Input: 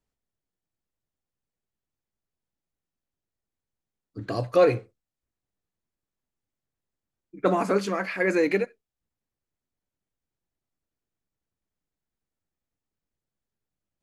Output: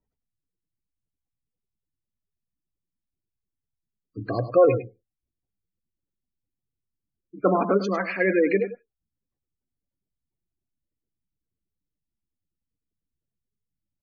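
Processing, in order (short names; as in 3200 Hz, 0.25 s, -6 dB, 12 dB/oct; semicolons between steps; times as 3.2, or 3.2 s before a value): spectral gate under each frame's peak -20 dB strong; on a send: echo 0.102 s -12 dB; on the sum: gain +2 dB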